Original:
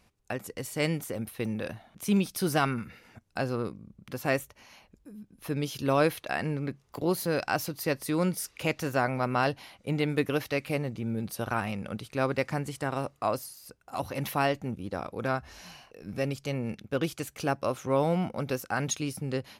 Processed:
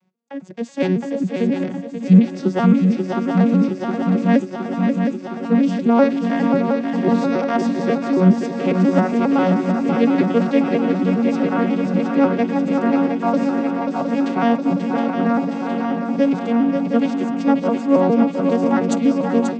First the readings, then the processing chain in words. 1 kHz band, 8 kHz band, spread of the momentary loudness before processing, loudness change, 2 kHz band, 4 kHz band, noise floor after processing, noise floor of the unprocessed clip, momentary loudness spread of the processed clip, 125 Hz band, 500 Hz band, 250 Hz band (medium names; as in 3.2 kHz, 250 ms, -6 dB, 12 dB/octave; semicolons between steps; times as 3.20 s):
+9.5 dB, no reading, 11 LU, +12.5 dB, +4.0 dB, +2.0 dB, -30 dBFS, -65 dBFS, 6 LU, +9.5 dB, +10.5 dB, +17.5 dB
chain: vocoder on a broken chord major triad, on F#3, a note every 136 ms; on a send: shuffle delay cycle 715 ms, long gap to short 3:1, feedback 71%, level -6 dB; on the sum: level rider gain up to 13 dB